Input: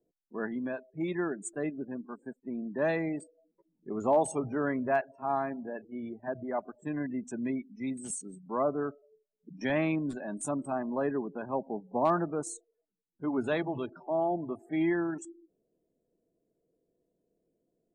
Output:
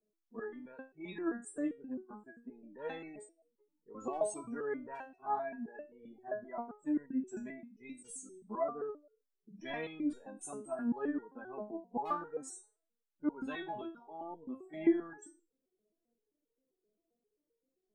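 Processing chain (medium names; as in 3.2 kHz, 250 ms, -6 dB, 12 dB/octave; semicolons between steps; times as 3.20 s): spectral replace 12.28–12.88 s, 790–2300 Hz both; resonator arpeggio 7.6 Hz 210–470 Hz; trim +7.5 dB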